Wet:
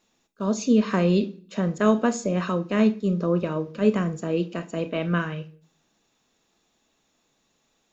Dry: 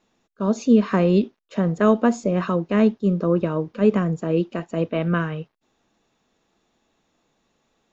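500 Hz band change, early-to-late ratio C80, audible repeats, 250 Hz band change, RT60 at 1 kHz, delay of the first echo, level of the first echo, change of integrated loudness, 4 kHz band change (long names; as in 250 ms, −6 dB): −3.5 dB, 22.0 dB, no echo audible, −3.0 dB, 0.40 s, no echo audible, no echo audible, −3.0 dB, +2.0 dB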